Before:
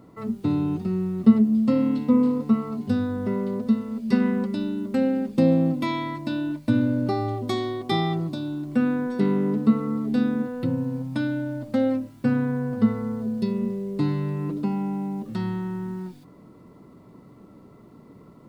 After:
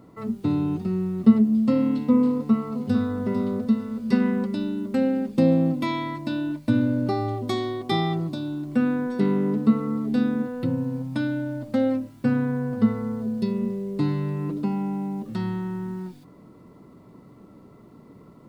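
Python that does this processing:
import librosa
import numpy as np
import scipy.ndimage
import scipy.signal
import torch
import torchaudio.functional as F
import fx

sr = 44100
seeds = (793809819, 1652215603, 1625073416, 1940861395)

y = fx.echo_throw(x, sr, start_s=2.3, length_s=0.9, ms=450, feedback_pct=30, wet_db=-8.5)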